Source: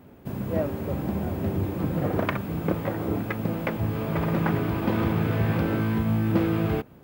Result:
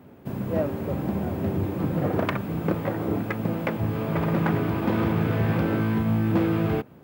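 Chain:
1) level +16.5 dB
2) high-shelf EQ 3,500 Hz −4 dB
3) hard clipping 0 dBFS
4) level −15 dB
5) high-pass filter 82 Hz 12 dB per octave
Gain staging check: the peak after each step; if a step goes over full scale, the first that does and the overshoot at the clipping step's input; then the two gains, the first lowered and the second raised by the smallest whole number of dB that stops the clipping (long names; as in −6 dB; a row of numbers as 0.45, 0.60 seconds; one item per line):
+6.5, +6.5, 0.0, −15.0, −11.5 dBFS
step 1, 6.5 dB
step 1 +9.5 dB, step 4 −8 dB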